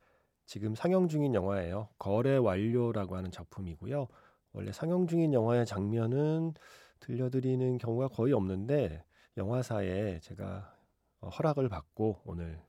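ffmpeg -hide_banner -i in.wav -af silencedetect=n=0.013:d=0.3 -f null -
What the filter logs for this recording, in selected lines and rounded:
silence_start: 0.00
silence_end: 0.51 | silence_duration: 0.51
silence_start: 4.06
silence_end: 4.55 | silence_duration: 0.49
silence_start: 6.52
silence_end: 7.09 | silence_duration: 0.57
silence_start: 8.97
silence_end: 9.37 | silence_duration: 0.40
silence_start: 10.61
silence_end: 11.23 | silence_duration: 0.62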